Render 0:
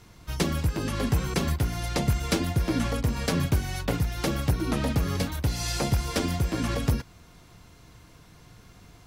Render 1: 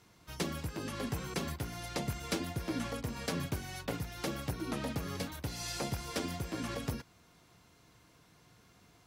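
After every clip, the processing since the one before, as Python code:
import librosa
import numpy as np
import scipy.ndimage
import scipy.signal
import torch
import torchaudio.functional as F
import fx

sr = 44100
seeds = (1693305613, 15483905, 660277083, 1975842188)

y = fx.highpass(x, sr, hz=170.0, slope=6)
y = F.gain(torch.from_numpy(y), -8.0).numpy()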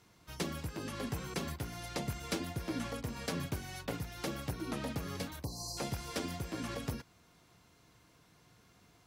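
y = fx.spec_erase(x, sr, start_s=5.44, length_s=0.34, low_hz=1200.0, high_hz=4000.0)
y = F.gain(torch.from_numpy(y), -1.5).numpy()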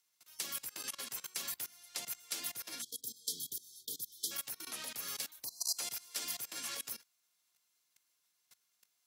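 y = fx.spec_erase(x, sr, start_s=2.82, length_s=1.49, low_hz=490.0, high_hz=3100.0)
y = fx.level_steps(y, sr, step_db=21)
y = np.diff(y, prepend=0.0)
y = F.gain(torch.from_numpy(y), 13.0).numpy()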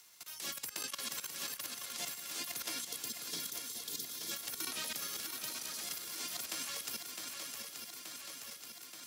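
y = fx.over_compress(x, sr, threshold_db=-46.0, ratio=-1.0)
y = fx.echo_swing(y, sr, ms=878, ratio=3, feedback_pct=58, wet_db=-7)
y = fx.band_squash(y, sr, depth_pct=40)
y = F.gain(torch.from_numpy(y), 3.5).numpy()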